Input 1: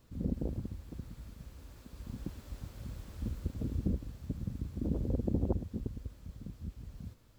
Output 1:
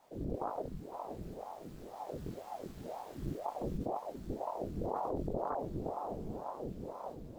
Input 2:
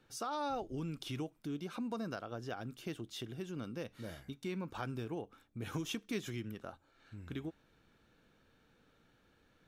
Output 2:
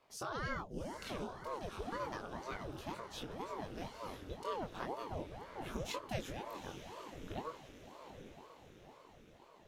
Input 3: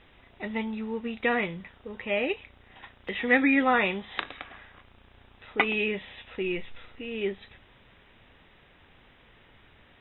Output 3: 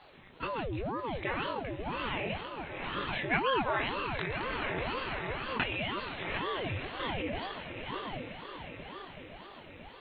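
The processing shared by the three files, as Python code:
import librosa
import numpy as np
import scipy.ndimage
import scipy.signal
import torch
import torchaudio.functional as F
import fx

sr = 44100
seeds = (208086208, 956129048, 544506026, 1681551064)

p1 = fx.doubler(x, sr, ms=22.0, db=-3)
p2 = fx.echo_diffused(p1, sr, ms=805, feedback_pct=55, wet_db=-8.5)
p3 = fx.over_compress(p2, sr, threshold_db=-32.0, ratio=-0.5)
p4 = p2 + (p3 * 10.0 ** (0.5 / 20.0))
p5 = fx.ring_lfo(p4, sr, carrier_hz=450.0, swing_pct=80, hz=2.0)
y = p5 * 10.0 ** (-7.5 / 20.0)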